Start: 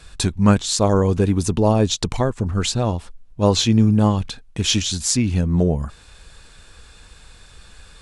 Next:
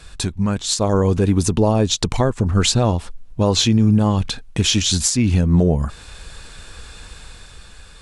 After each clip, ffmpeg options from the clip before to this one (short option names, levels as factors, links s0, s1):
-af "alimiter=limit=0.2:level=0:latency=1:release=307,dynaudnorm=f=110:g=13:m=1.78,volume=1.33"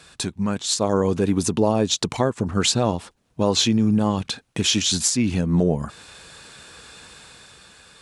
-af "highpass=150,volume=0.794"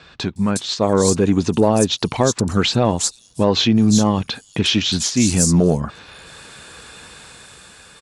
-filter_complex "[0:a]acrossover=split=5000[s0][s1];[s1]adelay=360[s2];[s0][s2]amix=inputs=2:normalize=0,acontrast=23"